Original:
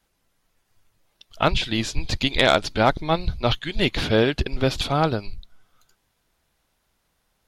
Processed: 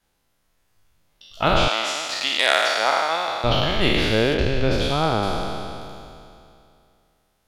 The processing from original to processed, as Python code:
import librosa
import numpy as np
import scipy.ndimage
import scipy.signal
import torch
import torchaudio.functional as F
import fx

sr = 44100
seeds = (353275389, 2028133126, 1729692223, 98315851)

y = fx.spec_trails(x, sr, decay_s=2.58)
y = fx.highpass(y, sr, hz=650.0, slope=12, at=(1.68, 3.44))
y = fx.high_shelf(y, sr, hz=5300.0, db=-9.0, at=(4.34, 5.23))
y = F.gain(torch.from_numpy(y), -3.0).numpy()